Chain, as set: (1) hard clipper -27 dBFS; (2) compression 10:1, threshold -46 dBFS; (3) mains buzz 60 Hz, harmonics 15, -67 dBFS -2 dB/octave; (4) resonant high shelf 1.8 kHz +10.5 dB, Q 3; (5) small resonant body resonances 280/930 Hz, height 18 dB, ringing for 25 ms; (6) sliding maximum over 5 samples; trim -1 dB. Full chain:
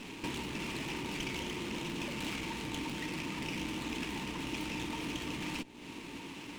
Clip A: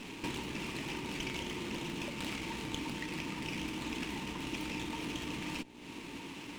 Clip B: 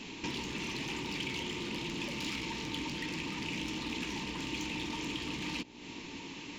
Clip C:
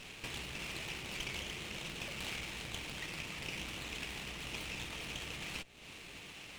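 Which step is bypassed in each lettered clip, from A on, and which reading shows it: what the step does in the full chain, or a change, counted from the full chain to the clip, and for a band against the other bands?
1, distortion -13 dB; 6, distortion -8 dB; 5, 250 Hz band -9.0 dB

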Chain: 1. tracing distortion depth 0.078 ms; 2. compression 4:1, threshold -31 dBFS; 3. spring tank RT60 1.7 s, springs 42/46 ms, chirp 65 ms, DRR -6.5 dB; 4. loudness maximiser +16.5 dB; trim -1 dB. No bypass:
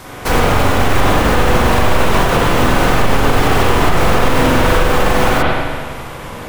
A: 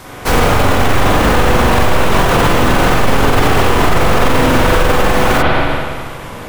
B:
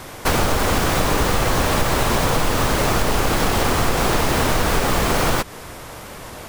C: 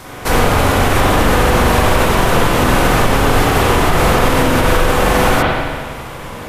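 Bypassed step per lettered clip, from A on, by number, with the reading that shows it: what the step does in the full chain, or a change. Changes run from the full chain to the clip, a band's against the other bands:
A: 2, mean gain reduction 5.5 dB; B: 3, momentary loudness spread change +7 LU; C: 1, 8 kHz band +2.5 dB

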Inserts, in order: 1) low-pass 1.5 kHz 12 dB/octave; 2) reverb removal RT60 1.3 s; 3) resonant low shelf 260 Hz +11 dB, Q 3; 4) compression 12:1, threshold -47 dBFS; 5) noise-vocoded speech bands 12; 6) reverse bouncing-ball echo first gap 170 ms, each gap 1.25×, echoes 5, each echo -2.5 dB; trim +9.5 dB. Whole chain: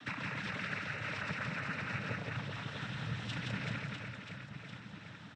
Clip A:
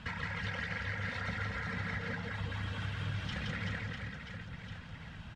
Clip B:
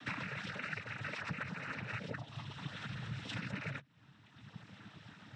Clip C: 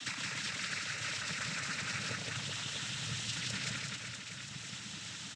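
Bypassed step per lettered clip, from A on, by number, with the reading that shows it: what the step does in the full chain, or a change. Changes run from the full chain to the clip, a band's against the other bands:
5, 125 Hz band +2.5 dB; 6, momentary loudness spread change +4 LU; 1, 8 kHz band +22.5 dB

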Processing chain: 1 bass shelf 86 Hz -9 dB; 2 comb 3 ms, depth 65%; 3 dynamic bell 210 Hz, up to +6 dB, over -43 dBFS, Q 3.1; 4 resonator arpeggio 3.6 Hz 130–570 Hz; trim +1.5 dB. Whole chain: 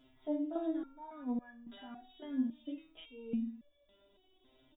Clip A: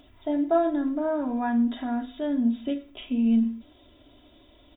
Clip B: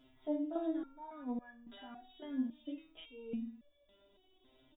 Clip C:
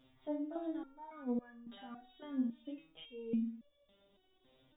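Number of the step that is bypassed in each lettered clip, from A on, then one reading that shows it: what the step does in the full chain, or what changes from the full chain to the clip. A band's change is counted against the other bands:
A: 4, crest factor change -1.5 dB; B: 3, 250 Hz band -2.0 dB; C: 2, loudness change -2.0 LU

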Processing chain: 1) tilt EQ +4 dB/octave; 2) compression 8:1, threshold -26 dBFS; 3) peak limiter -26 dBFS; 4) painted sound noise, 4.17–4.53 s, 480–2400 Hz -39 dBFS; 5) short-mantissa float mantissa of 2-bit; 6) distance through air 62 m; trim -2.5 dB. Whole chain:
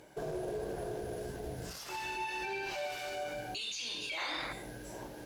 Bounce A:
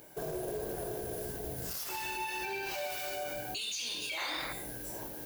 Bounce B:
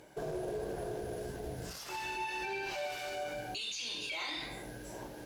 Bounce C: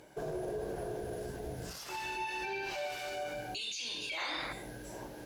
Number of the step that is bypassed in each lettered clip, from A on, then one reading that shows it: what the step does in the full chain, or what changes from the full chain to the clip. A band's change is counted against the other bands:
6, 8 kHz band +5.5 dB; 4, crest factor change -2.0 dB; 5, distortion -20 dB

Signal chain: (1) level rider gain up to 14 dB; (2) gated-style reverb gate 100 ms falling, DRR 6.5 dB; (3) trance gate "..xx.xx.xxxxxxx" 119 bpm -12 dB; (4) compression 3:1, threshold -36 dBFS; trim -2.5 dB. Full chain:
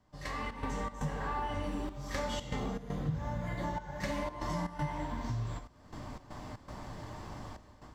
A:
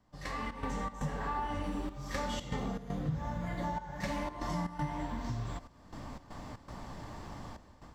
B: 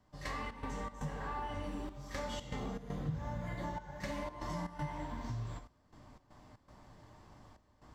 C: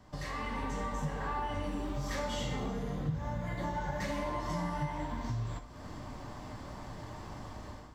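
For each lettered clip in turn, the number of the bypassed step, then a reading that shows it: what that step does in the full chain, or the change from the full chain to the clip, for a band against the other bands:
2, 250 Hz band +1.5 dB; 1, momentary loudness spread change +9 LU; 3, momentary loudness spread change -1 LU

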